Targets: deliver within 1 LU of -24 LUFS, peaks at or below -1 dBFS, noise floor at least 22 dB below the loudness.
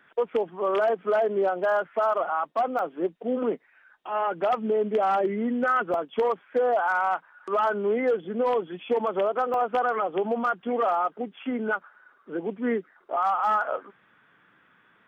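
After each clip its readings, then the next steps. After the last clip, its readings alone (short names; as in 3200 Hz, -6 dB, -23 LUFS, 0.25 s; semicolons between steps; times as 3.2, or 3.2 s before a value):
clipped 0.3%; flat tops at -17.0 dBFS; dropouts 3; longest dropout 1.6 ms; loudness -26.5 LUFS; peak -17.0 dBFS; loudness target -24.0 LUFS
-> clip repair -17 dBFS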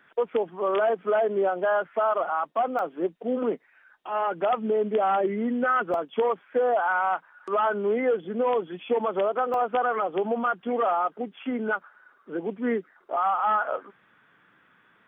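clipped 0.0%; dropouts 3; longest dropout 1.6 ms
-> interpolate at 2.79/5.94/9.54, 1.6 ms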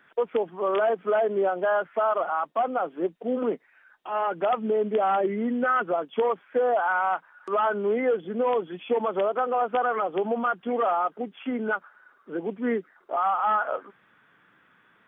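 dropouts 0; loudness -26.0 LUFS; peak -14.0 dBFS; loudness target -24.0 LUFS
-> gain +2 dB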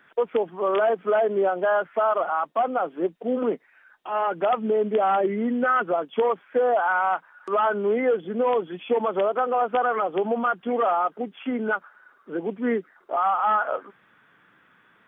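loudness -24.0 LUFS; peak -12.0 dBFS; noise floor -60 dBFS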